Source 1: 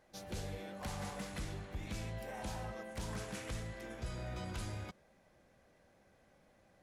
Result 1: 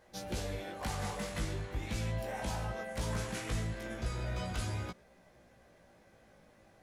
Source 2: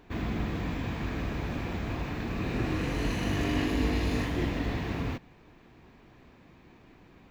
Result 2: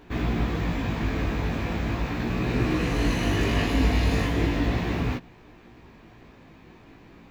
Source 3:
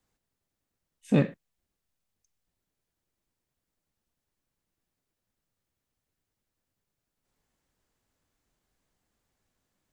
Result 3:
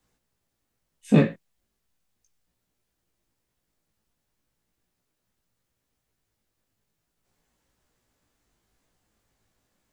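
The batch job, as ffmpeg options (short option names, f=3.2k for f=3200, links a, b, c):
-af "flanger=delay=16.5:depth=2.1:speed=0.38,volume=8.5dB"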